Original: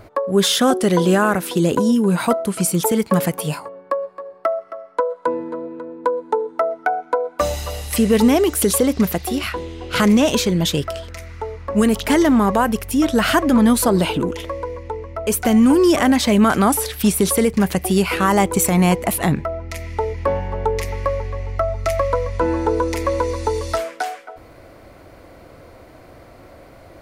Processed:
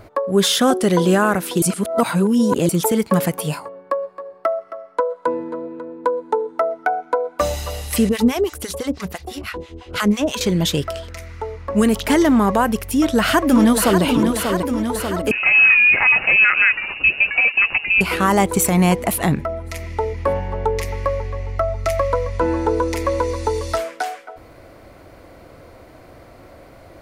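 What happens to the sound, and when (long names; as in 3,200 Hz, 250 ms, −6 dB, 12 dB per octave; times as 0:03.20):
0:01.62–0:02.69: reverse
0:08.09–0:10.41: two-band tremolo in antiphase 6 Hz, depth 100%, crossover 750 Hz
0:12.85–0:14.03: delay throw 590 ms, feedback 70%, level −6 dB
0:15.31–0:18.01: voice inversion scrambler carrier 2,800 Hz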